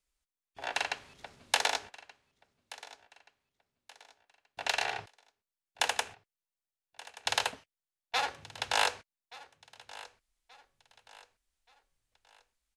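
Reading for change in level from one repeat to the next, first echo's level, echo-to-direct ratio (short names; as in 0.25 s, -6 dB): -8.0 dB, -19.0 dB, -18.5 dB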